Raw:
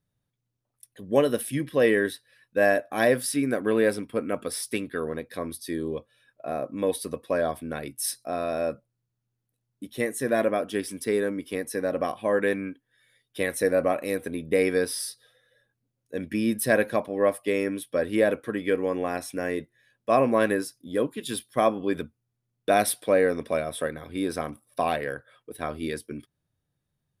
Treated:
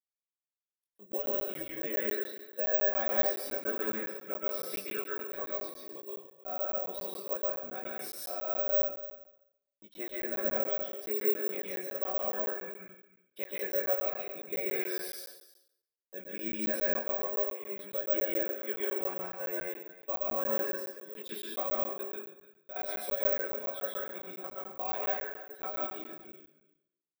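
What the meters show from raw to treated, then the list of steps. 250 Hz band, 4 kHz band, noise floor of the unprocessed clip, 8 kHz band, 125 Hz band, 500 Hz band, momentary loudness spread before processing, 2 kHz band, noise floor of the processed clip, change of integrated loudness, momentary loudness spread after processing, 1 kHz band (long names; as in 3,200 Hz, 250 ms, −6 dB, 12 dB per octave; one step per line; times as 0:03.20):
−16.0 dB, −9.5 dB, −81 dBFS, −15.0 dB, below −15 dB, −10.0 dB, 12 LU, −10.5 dB, below −85 dBFS, −6.0 dB, 13 LU, −10.5 dB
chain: notch filter 1,900 Hz, Q 15
noise gate −48 dBFS, range −34 dB
high-pass filter 400 Hz 12 dB per octave
high-shelf EQ 6,000 Hz −12 dB
comb filter 5.3 ms, depth 79%
downward compressor 6 to 1, threshold −24 dBFS, peak gain reduction 11 dB
chorus effect 0.81 Hz, delay 19 ms, depth 2.9 ms
gate pattern ".xxxx..xxxxxx" 116 BPM −12 dB
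single-tap delay 306 ms −17 dB
dense smooth reverb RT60 0.75 s, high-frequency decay 0.85×, pre-delay 110 ms, DRR −3 dB
bad sample-rate conversion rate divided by 2×, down filtered, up zero stuff
regular buffer underruns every 0.14 s, samples 512, zero, from 0:00.70
level −7.5 dB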